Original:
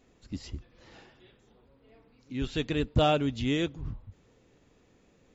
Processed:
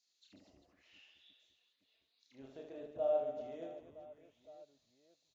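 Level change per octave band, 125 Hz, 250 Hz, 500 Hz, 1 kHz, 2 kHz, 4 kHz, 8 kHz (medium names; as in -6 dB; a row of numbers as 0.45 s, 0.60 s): -32.5 dB, -23.0 dB, -6.0 dB, -15.0 dB, under -25 dB, under -25 dB, no reading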